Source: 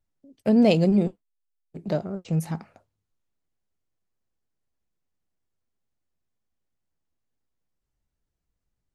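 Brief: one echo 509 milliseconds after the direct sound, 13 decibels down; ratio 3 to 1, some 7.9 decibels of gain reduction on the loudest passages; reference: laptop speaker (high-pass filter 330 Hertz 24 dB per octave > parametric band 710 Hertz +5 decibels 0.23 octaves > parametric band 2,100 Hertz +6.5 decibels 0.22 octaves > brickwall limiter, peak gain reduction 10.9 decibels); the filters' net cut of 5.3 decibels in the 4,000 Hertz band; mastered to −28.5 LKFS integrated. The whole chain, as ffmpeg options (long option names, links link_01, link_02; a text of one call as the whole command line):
ffmpeg -i in.wav -af "equalizer=frequency=4000:width_type=o:gain=-8,acompressor=threshold=-25dB:ratio=3,highpass=frequency=330:width=0.5412,highpass=frequency=330:width=1.3066,equalizer=frequency=710:width_type=o:width=0.23:gain=5,equalizer=frequency=2100:width_type=o:width=0.22:gain=6.5,aecho=1:1:509:0.224,volume=12dB,alimiter=limit=-17dB:level=0:latency=1" out.wav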